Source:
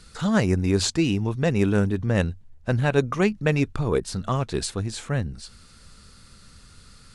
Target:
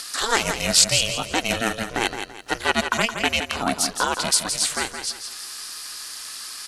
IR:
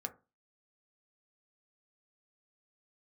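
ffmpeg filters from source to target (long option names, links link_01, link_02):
-filter_complex "[0:a]highpass=560,highshelf=frequency=2000:gain=10.5,bandreject=frequency=1800:width=16,asplit=2[link_01][link_02];[link_02]alimiter=limit=-17dB:level=0:latency=1:release=206,volume=0dB[link_03];[link_01][link_03]amix=inputs=2:normalize=0,acompressor=mode=upward:threshold=-28dB:ratio=2.5,aeval=exprs='val(0)*sin(2*PI*210*n/s)':channel_layout=same,asetrate=47187,aresample=44100,aecho=1:1:168|336|504|672:0.398|0.135|0.046|0.0156,volume=2.5dB"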